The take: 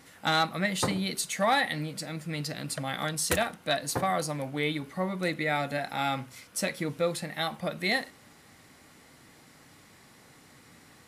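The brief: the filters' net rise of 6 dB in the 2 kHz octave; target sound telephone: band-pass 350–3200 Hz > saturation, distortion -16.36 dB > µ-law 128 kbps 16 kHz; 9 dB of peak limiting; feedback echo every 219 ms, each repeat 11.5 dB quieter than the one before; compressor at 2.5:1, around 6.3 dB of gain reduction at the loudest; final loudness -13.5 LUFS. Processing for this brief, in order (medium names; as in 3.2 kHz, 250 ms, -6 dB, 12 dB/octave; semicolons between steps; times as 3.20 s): peaking EQ 2 kHz +7.5 dB; compression 2.5:1, threshold -27 dBFS; peak limiter -21.5 dBFS; band-pass 350–3200 Hz; feedback delay 219 ms, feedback 27%, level -11.5 dB; saturation -26.5 dBFS; trim +22.5 dB; µ-law 128 kbps 16 kHz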